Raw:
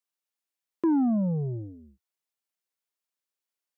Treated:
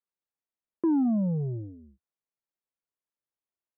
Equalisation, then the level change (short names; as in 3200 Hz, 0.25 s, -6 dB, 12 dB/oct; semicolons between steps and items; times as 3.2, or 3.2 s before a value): LPF 1200 Hz 6 dB/oct; air absorption 370 m; notch 760 Hz, Q 25; 0.0 dB